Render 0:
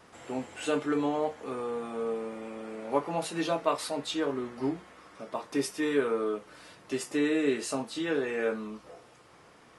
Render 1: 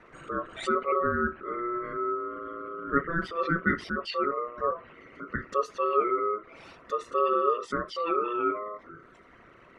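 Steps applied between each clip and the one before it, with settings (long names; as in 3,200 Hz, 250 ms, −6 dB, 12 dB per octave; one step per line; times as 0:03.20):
spectral envelope exaggerated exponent 2
treble cut that deepens with the level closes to 2,600 Hz, closed at −29 dBFS
ring modulation 840 Hz
level +5 dB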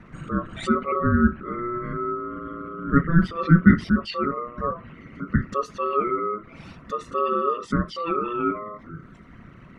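low shelf with overshoot 290 Hz +12.5 dB, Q 1.5
level +2.5 dB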